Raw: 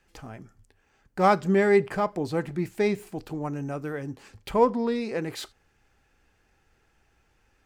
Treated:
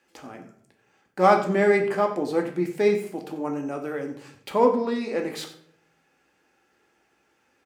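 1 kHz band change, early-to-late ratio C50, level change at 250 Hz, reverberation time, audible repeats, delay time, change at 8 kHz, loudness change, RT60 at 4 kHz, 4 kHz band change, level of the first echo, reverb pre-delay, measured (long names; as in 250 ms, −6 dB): +2.5 dB, 9.0 dB, +1.0 dB, 0.65 s, 1, 92 ms, +1.5 dB, +2.0 dB, 0.45 s, +1.5 dB, −15.0 dB, 4 ms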